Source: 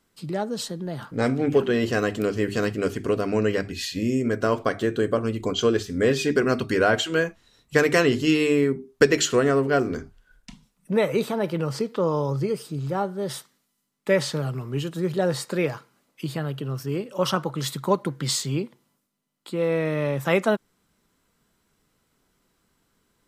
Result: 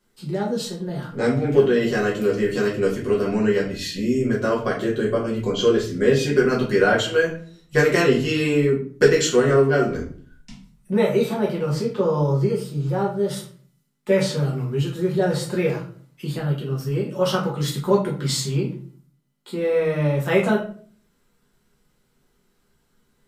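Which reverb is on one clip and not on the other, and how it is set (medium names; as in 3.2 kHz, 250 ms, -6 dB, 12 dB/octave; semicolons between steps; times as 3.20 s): simulated room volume 35 m³, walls mixed, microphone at 0.99 m; trim -4.5 dB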